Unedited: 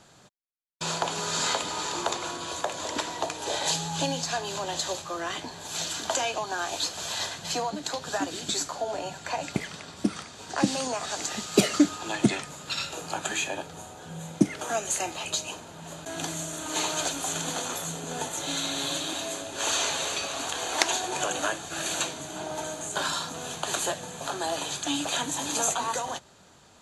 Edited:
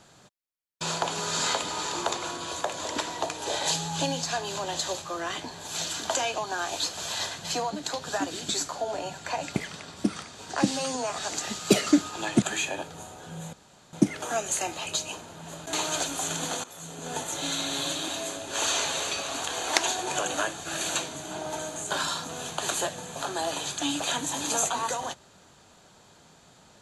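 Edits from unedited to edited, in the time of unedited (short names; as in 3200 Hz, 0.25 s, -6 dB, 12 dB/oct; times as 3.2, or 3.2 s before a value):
10.71–10.97 stretch 1.5×
12.29–13.21 cut
14.32 insert room tone 0.40 s
16.12–16.78 cut
17.69–18.25 fade in, from -19 dB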